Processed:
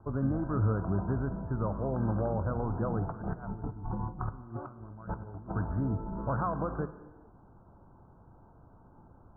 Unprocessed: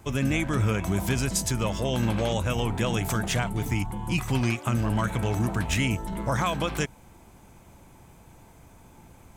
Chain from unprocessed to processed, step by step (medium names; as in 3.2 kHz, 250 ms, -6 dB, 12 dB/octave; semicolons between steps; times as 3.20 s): steep low-pass 1.5 kHz 96 dB/octave; 3.09–5.52 s: compressor with a negative ratio -33 dBFS, ratio -0.5; gated-style reverb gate 460 ms falling, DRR 11.5 dB; trim -5 dB